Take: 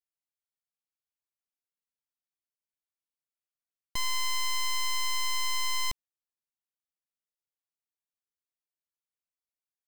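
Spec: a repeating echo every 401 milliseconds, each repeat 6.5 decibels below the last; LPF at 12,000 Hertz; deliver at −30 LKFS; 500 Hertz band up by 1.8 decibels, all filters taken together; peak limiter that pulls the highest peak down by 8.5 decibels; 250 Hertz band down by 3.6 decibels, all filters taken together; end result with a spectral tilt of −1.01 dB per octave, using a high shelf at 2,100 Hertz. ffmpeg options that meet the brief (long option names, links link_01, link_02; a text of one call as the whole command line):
ffmpeg -i in.wav -af "lowpass=12000,equalizer=frequency=250:width_type=o:gain=-7,equalizer=frequency=500:width_type=o:gain=4.5,highshelf=frequency=2100:gain=-5,alimiter=level_in=11dB:limit=-24dB:level=0:latency=1,volume=-11dB,aecho=1:1:401|802|1203|1604|2005|2406:0.473|0.222|0.105|0.0491|0.0231|0.0109,volume=9.5dB" out.wav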